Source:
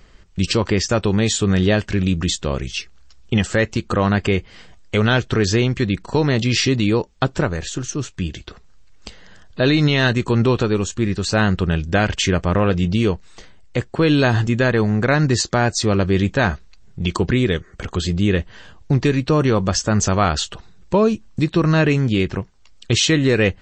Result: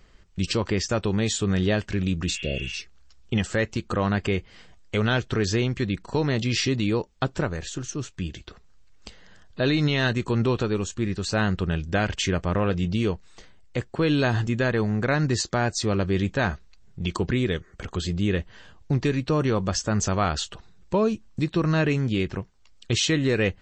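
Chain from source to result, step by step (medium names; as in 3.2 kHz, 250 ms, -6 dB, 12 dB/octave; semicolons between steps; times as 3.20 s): spectral replace 2.31–2.76 s, 690–3500 Hz after; trim -6.5 dB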